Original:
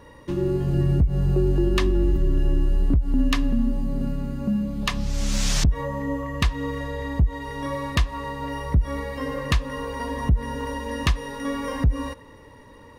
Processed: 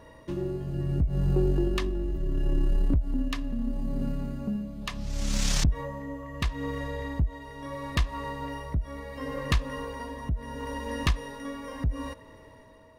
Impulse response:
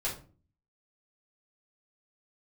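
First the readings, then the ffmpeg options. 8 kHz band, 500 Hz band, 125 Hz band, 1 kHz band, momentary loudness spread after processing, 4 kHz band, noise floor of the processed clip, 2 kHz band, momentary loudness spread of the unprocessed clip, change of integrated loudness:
-4.0 dB, -6.0 dB, -6.0 dB, -6.0 dB, 11 LU, -5.0 dB, -51 dBFS, -6.0 dB, 9 LU, -6.0 dB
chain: -af "tremolo=f=0.73:d=0.54,aeval=exprs='val(0)+0.002*sin(2*PI*640*n/s)':c=same,aeval=exprs='0.376*(cos(1*acos(clip(val(0)/0.376,-1,1)))-cos(1*PI/2))+0.0237*(cos(4*acos(clip(val(0)/0.376,-1,1)))-cos(4*PI/2))':c=same,volume=-3.5dB"

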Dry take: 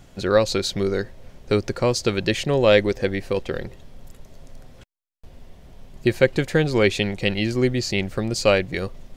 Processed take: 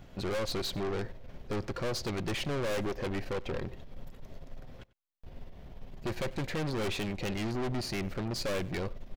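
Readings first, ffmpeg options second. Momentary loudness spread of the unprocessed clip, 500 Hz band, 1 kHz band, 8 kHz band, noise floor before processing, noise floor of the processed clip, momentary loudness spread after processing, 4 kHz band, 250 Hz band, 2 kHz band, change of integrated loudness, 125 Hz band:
9 LU, -15.0 dB, -9.5 dB, -11.0 dB, -49 dBFS, -52 dBFS, 19 LU, -11.0 dB, -11.5 dB, -13.5 dB, -13.0 dB, -10.5 dB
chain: -filter_complex "[0:a]equalizer=f=8.8k:w=0.81:g=-13,aeval=exprs='(tanh(35.5*val(0)+0.55)-tanh(0.55))/35.5':c=same,asplit=2[a][b];[b]aecho=0:1:94:0.0841[c];[a][c]amix=inputs=2:normalize=0"

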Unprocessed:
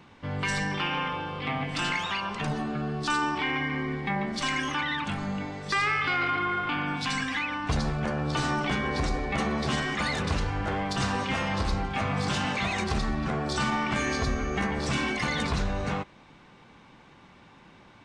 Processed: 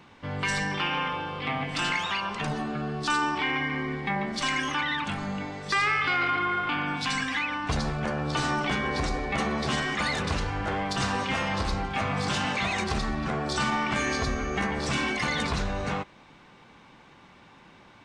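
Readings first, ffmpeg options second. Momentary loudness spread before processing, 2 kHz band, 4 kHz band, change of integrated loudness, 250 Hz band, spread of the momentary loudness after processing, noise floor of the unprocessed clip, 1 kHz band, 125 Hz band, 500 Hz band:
4 LU, +1.5 dB, +1.5 dB, +0.5 dB, -1.0 dB, 5 LU, -54 dBFS, +1.0 dB, -1.5 dB, +0.5 dB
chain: -af "lowshelf=f=320:g=-3.5,volume=1.5dB"

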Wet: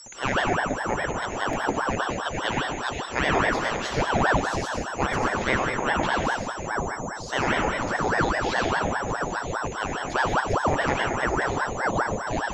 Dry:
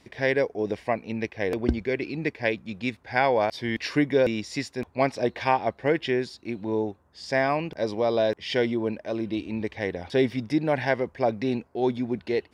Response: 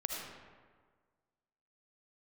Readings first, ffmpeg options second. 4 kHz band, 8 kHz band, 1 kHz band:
+4.0 dB, +13.0 dB, +6.0 dB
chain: -filter_complex "[0:a]aeval=exprs='val(0)+0.0112*sin(2*PI*6600*n/s)':c=same[a];[1:a]atrim=start_sample=2205,asetrate=37926,aresample=44100[b];[a][b]afir=irnorm=-1:irlink=0,aeval=exprs='val(0)*sin(2*PI*730*n/s+730*0.8/4.9*sin(2*PI*4.9*n/s))':c=same"

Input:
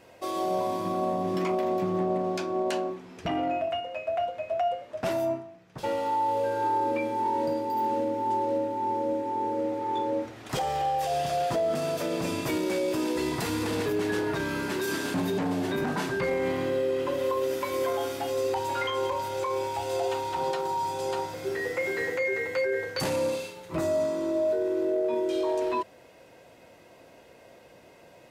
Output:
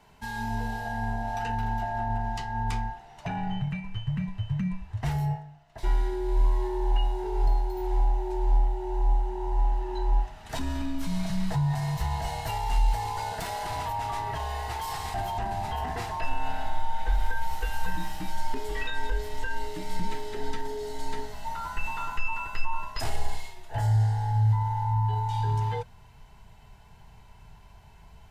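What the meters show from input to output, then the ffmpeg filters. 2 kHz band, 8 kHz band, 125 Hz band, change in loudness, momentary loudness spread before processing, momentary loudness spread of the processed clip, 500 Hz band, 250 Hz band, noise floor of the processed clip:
-3.0 dB, -3.5 dB, +11.5 dB, -2.0 dB, 4 LU, 9 LU, -12.0 dB, -5.0 dB, -51 dBFS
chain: -af "afftfilt=real='real(if(lt(b,1008),b+24*(1-2*mod(floor(b/24),2)),b),0)':imag='imag(if(lt(b,1008),b+24*(1-2*mod(floor(b/24),2)),b),0)':win_size=2048:overlap=0.75,asubboost=boost=4.5:cutoff=120,volume=-3.5dB"

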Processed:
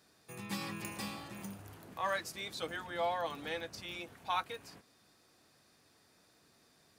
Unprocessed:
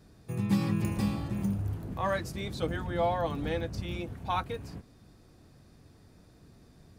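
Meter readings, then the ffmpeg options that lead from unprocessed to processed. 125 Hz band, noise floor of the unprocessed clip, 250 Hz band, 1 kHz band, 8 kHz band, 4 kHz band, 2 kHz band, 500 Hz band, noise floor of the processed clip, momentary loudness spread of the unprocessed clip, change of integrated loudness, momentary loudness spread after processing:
-19.0 dB, -58 dBFS, -14.5 dB, -4.0 dB, +1.0 dB, +0.5 dB, -1.0 dB, -7.0 dB, -68 dBFS, 9 LU, -7.5 dB, 13 LU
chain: -af "highpass=f=1.3k:p=1,volume=1dB"

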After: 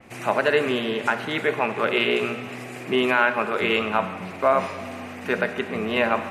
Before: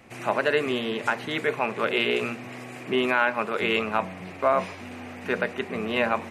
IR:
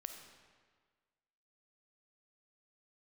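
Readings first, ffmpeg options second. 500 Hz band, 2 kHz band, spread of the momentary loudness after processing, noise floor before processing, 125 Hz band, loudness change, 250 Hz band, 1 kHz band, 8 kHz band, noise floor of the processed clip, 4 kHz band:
+3.0 dB, +3.0 dB, 11 LU, -41 dBFS, +2.5 dB, +2.5 dB, +2.5 dB, +3.0 dB, n/a, -37 dBFS, +2.5 dB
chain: -filter_complex "[0:a]asplit=2[a][b];[1:a]atrim=start_sample=2205,highshelf=f=9k:g=7.5[c];[b][c]afir=irnorm=-1:irlink=0,volume=6.5dB[d];[a][d]amix=inputs=2:normalize=0,adynamicequalizer=threshold=0.0224:dfrequency=3700:dqfactor=0.7:tfrequency=3700:tqfactor=0.7:attack=5:release=100:ratio=0.375:range=2:mode=cutabove:tftype=highshelf,volume=-4.5dB"

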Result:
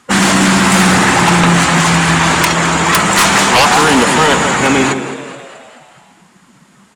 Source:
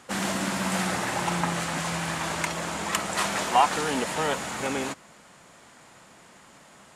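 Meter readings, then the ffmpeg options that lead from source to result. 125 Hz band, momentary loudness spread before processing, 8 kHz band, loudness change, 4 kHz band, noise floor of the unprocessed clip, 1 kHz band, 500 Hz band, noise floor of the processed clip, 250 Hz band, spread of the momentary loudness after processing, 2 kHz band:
+19.5 dB, 7 LU, +17.0 dB, +17.5 dB, +18.0 dB, -53 dBFS, +15.5 dB, +15.5 dB, -48 dBFS, +19.0 dB, 4 LU, +19.0 dB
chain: -filter_complex "[0:a]equalizer=f=590:t=o:w=0.71:g=-6.5,asplit=2[a][b];[b]adelay=162,lowpass=f=2k:p=1,volume=-10dB,asplit=2[c][d];[d]adelay=162,lowpass=f=2k:p=1,volume=0.51,asplit=2[e][f];[f]adelay=162,lowpass=f=2k:p=1,volume=0.51,asplit=2[g][h];[h]adelay=162,lowpass=f=2k:p=1,volume=0.51,asplit=2[i][j];[j]adelay=162,lowpass=f=2k:p=1,volume=0.51,asplit=2[k][l];[l]adelay=162,lowpass=f=2k:p=1,volume=0.51[m];[c][e][g][i][k][m]amix=inputs=6:normalize=0[n];[a][n]amix=inputs=2:normalize=0,afftdn=nr=18:nf=-42,bandreject=f=104.1:t=h:w=4,bandreject=f=208.2:t=h:w=4,bandreject=f=312.3:t=h:w=4,bandreject=f=416.4:t=h:w=4,bandreject=f=520.5:t=h:w=4,bandreject=f=624.6:t=h:w=4,bandreject=f=728.7:t=h:w=4,bandreject=f=832.8:t=h:w=4,asplit=2[o][p];[p]asplit=6[q][r][s][t][u][v];[q]adelay=214,afreqshift=94,volume=-15.5dB[w];[r]adelay=428,afreqshift=188,volume=-20.4dB[x];[s]adelay=642,afreqshift=282,volume=-25.3dB[y];[t]adelay=856,afreqshift=376,volume=-30.1dB[z];[u]adelay=1070,afreqshift=470,volume=-35dB[aa];[v]adelay=1284,afreqshift=564,volume=-39.9dB[ab];[w][x][y][z][aa][ab]amix=inputs=6:normalize=0[ac];[o][ac]amix=inputs=2:normalize=0,aeval=exprs='0.422*sin(PI/2*5.01*val(0)/0.422)':c=same,volume=3dB"

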